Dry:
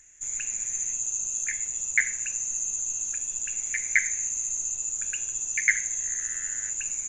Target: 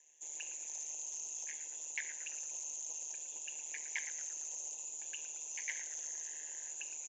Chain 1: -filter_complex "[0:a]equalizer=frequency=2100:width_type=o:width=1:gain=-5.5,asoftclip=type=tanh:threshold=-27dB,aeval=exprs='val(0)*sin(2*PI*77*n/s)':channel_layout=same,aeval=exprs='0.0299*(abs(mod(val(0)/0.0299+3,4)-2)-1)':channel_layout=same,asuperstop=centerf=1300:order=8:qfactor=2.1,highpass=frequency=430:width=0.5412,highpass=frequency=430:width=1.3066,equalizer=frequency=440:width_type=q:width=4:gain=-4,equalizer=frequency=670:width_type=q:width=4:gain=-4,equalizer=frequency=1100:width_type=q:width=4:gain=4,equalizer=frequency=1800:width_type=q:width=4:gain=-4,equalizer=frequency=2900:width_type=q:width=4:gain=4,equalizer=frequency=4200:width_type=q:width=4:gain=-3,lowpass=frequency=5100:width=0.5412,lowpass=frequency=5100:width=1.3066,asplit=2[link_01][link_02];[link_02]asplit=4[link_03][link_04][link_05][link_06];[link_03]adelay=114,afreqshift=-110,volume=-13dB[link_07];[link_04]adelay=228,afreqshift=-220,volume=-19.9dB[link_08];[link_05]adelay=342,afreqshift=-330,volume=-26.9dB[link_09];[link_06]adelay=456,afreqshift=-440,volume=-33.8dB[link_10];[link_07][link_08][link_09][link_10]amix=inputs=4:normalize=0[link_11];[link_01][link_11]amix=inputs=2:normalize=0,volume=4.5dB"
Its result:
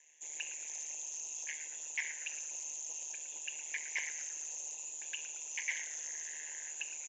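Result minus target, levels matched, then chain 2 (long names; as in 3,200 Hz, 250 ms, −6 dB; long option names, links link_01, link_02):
2,000 Hz band +4.0 dB
-filter_complex "[0:a]equalizer=frequency=2100:width_type=o:width=1:gain=-16.5,asoftclip=type=tanh:threshold=-27dB,aeval=exprs='val(0)*sin(2*PI*77*n/s)':channel_layout=same,aeval=exprs='0.0299*(abs(mod(val(0)/0.0299+3,4)-2)-1)':channel_layout=same,asuperstop=centerf=1300:order=8:qfactor=2.1,highpass=frequency=430:width=0.5412,highpass=frequency=430:width=1.3066,equalizer=frequency=440:width_type=q:width=4:gain=-4,equalizer=frequency=670:width_type=q:width=4:gain=-4,equalizer=frequency=1100:width_type=q:width=4:gain=4,equalizer=frequency=1800:width_type=q:width=4:gain=-4,equalizer=frequency=2900:width_type=q:width=4:gain=4,equalizer=frequency=4200:width_type=q:width=4:gain=-3,lowpass=frequency=5100:width=0.5412,lowpass=frequency=5100:width=1.3066,asplit=2[link_01][link_02];[link_02]asplit=4[link_03][link_04][link_05][link_06];[link_03]adelay=114,afreqshift=-110,volume=-13dB[link_07];[link_04]adelay=228,afreqshift=-220,volume=-19.9dB[link_08];[link_05]adelay=342,afreqshift=-330,volume=-26.9dB[link_09];[link_06]adelay=456,afreqshift=-440,volume=-33.8dB[link_10];[link_07][link_08][link_09][link_10]amix=inputs=4:normalize=0[link_11];[link_01][link_11]amix=inputs=2:normalize=0,volume=4.5dB"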